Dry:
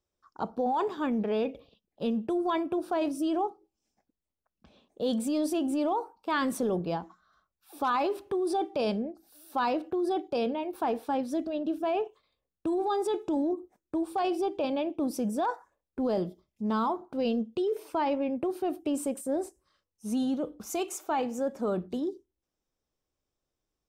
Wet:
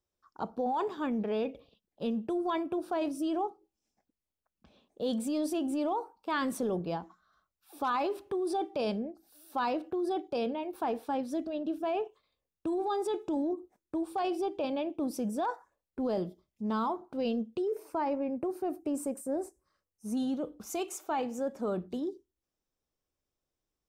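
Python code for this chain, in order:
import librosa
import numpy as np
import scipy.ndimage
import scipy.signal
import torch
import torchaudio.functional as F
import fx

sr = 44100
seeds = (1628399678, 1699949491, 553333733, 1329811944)

y = fx.peak_eq(x, sr, hz=3300.0, db=-12.0, octaves=0.76, at=(17.58, 20.17))
y = y * librosa.db_to_amplitude(-3.0)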